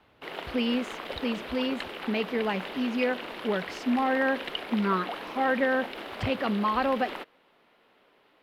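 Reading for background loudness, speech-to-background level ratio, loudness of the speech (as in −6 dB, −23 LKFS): −37.5 LKFS, 8.5 dB, −29.0 LKFS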